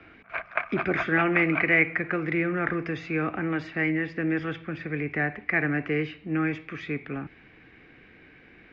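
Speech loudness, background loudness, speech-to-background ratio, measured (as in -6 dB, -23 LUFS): -27.0 LUFS, -32.5 LUFS, 5.5 dB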